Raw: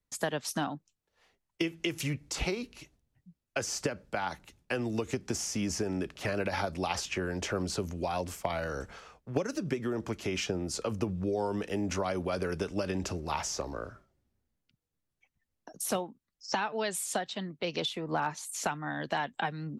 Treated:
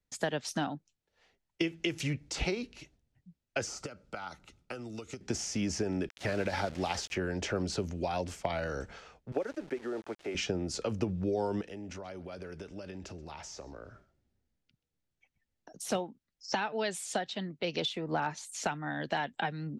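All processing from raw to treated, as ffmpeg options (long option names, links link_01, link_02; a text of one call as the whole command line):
ffmpeg -i in.wav -filter_complex "[0:a]asettb=1/sr,asplit=3[link_01][link_02][link_03];[link_01]atrim=end=3.674[link_04];[link_02]atrim=start=3.67:end=5.21,asetpts=PTS-STARTPTS,afade=type=in:duration=0.004:curve=qsin,afade=type=out:start_time=1.536:duration=0.004:curve=qsin,bandreject=frequency=1700:width=6.9,acrossover=split=1800|5100[link_05][link_06][link_07];[link_05]acompressor=threshold=-41dB:ratio=4[link_08];[link_06]acompressor=threshold=-54dB:ratio=4[link_09];[link_07]acompressor=threshold=-40dB:ratio=4[link_10];[link_08][link_09][link_10]amix=inputs=3:normalize=0,equalizer=frequency=1300:width=6:gain=11.5[link_11];[link_03]atrim=start=5.206[link_12];[link_04][link_11]acrossfade=duration=0.004:curve1=hsin:curve2=qsin[link_13];[link_13][link_12]acrossfade=duration=0.004:curve1=qsin:curve2=hsin,asettb=1/sr,asplit=3[link_14][link_15][link_16];[link_14]atrim=end=6.094[link_17];[link_15]atrim=start=6.09:end=7.15,asetpts=PTS-STARTPTS,afade=type=in:duration=0.004:curve=qsin,afade=type=out:start_time=1.056:duration=0.004:curve=qsin,equalizer=frequency=2600:width=5.2:gain=-3.5,aeval=exprs='val(0)*gte(abs(val(0)),0.00944)':channel_layout=same[link_18];[link_16]atrim=start=7.146[link_19];[link_17][link_18]acrossfade=duration=0.004:curve1=hsin:curve2=qsin[link_20];[link_20][link_19]acrossfade=duration=0.004:curve1=qsin:curve2=hsin,asettb=1/sr,asplit=3[link_21][link_22][link_23];[link_21]atrim=end=9.324[link_24];[link_22]atrim=start=9.32:end=10.35,asetpts=PTS-STARTPTS,afade=type=in:duration=0.004:curve=qsin,afade=type=out:start_time=1.026:duration=0.004:curve=qsin,acrossover=split=290 2100:gain=0.0891 1 0.141[link_25][link_26][link_27];[link_25][link_26][link_27]amix=inputs=3:normalize=0,bandreject=frequency=1000:width=15,aeval=exprs='val(0)*gte(abs(val(0)),0.00422)':channel_layout=same[link_28];[link_23]atrim=start=10.346[link_29];[link_24][link_28]acrossfade=duration=0.004:curve1=hsin:curve2=qsin[link_30];[link_30][link_29]acrossfade=duration=0.004:curve1=qsin:curve2=hsin,asettb=1/sr,asplit=3[link_31][link_32][link_33];[link_31]atrim=end=11.614[link_34];[link_32]atrim=start=11.61:end=15.72,asetpts=PTS-STARTPTS,afade=type=in:duration=0.004:curve=qsin,afade=type=out:start_time=4.106:duration=0.004:curve=qsin,acompressor=threshold=-48dB:ratio=2:attack=3.2:release=140:knee=1:detection=peak,aecho=1:1:130:0.0794,atrim=end_sample=181251[link_35];[link_33]atrim=start=15.716[link_36];[link_34][link_35]acrossfade=duration=0.004:curve1=hsin:curve2=qsin[link_37];[link_37][link_36]acrossfade=duration=0.004:curve1=qsin:curve2=hsin,lowpass=7000,equalizer=frequency=1100:width_type=o:width=0.37:gain=-6" out.wav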